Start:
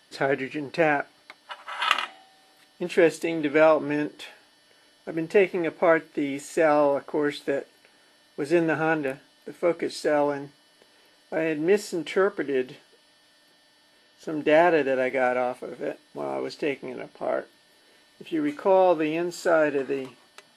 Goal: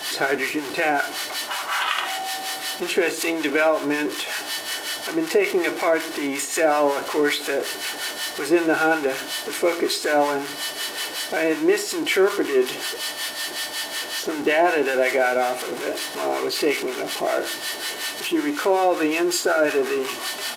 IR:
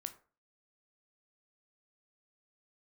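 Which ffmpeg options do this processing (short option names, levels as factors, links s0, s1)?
-filter_complex "[0:a]aeval=exprs='val(0)+0.5*0.0355*sgn(val(0))':c=same,highpass=f=530:p=1,aecho=1:1:2.7:0.32,alimiter=limit=0.168:level=0:latency=1:release=125,acrossover=split=860[s0][s1];[s0]aeval=exprs='val(0)*(1-0.7/2+0.7/2*cos(2*PI*5.4*n/s))':c=same[s2];[s1]aeval=exprs='val(0)*(1-0.7/2-0.7/2*cos(2*PI*5.4*n/s))':c=same[s3];[s2][s3]amix=inputs=2:normalize=0,asplit=2[s4][s5];[1:a]atrim=start_sample=2205[s6];[s5][s6]afir=irnorm=-1:irlink=0,volume=3.16[s7];[s4][s7]amix=inputs=2:normalize=0,aresample=32000,aresample=44100,volume=0.891"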